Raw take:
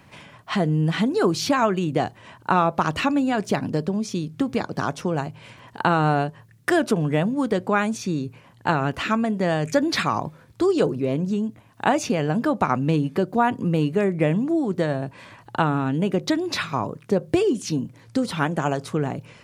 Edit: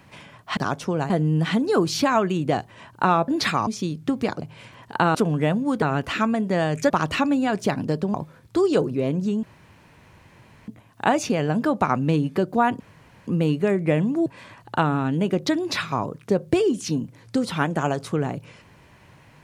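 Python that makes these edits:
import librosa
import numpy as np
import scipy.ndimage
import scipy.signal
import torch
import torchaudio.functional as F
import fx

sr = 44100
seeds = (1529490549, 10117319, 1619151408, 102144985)

y = fx.edit(x, sr, fx.swap(start_s=2.75, length_s=1.24, other_s=9.8, other_length_s=0.39),
    fx.move(start_s=4.74, length_s=0.53, to_s=0.57),
    fx.cut(start_s=6.0, length_s=0.86),
    fx.cut(start_s=7.53, length_s=1.19),
    fx.insert_room_tone(at_s=11.48, length_s=1.25),
    fx.insert_room_tone(at_s=13.6, length_s=0.47),
    fx.cut(start_s=14.59, length_s=0.48), tone=tone)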